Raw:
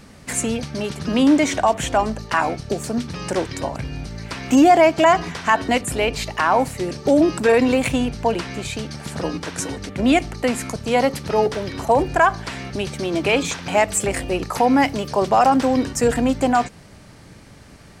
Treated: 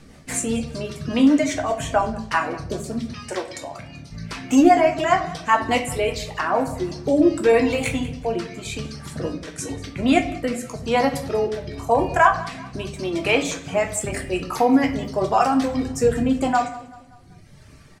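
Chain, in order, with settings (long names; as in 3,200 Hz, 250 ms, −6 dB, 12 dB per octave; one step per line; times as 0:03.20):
0:03.13–0:04.10: high-pass filter 640 Hz → 280 Hz 6 dB per octave
reverb reduction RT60 1.8 s
rotating-speaker cabinet horn 5 Hz, later 0.9 Hz, at 0:06.28
repeating echo 192 ms, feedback 46%, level −19 dB
convolution reverb RT60 0.55 s, pre-delay 7 ms, DRR 2.5 dB
level −1 dB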